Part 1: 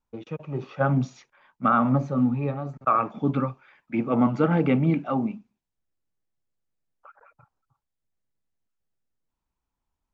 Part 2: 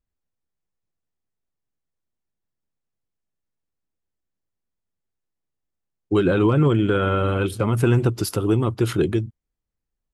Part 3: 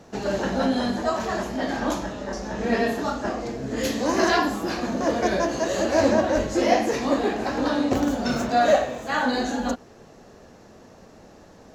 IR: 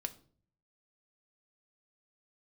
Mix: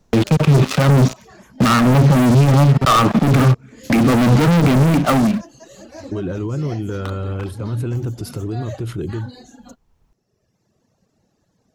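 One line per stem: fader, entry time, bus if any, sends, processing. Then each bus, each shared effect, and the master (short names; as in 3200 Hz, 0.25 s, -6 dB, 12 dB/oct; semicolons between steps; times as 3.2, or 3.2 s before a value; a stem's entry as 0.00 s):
+2.5 dB, 0.00 s, no send, tone controls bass +9 dB, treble -14 dB; sample leveller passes 5; three-band squash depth 70%; auto duck -15 dB, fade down 1.65 s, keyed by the second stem
-7.0 dB, 0.00 s, no send, tilt -3 dB/oct; limiter -10 dBFS, peak gain reduction 8 dB
-18.0 dB, 0.00 s, no send, reverb removal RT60 1.8 s; bell 130 Hz +12 dB 1.7 oct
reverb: off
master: high shelf 3700 Hz +11 dB; limiter -5.5 dBFS, peak gain reduction 10 dB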